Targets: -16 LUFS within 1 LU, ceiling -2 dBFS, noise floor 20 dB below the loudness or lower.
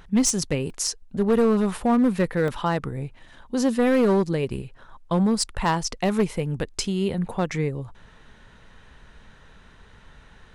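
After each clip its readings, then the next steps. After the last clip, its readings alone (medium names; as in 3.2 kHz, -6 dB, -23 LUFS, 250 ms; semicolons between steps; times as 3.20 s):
clipped samples 1.4%; clipping level -14.5 dBFS; dropouts 2; longest dropout 1.6 ms; loudness -23.5 LUFS; peak level -14.5 dBFS; loudness target -16.0 LUFS
-> clip repair -14.5 dBFS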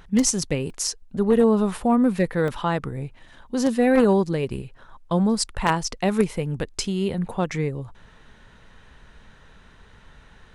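clipped samples 0.0%; dropouts 2; longest dropout 1.6 ms
-> interpolate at 0.70/2.48 s, 1.6 ms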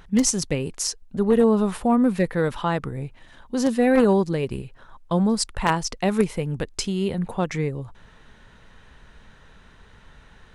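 dropouts 0; loudness -23.0 LUFS; peak level -5.5 dBFS; loudness target -16.0 LUFS
-> trim +7 dB; peak limiter -2 dBFS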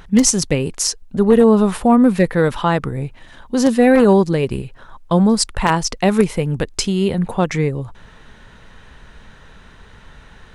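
loudness -16.0 LUFS; peak level -2.0 dBFS; noise floor -44 dBFS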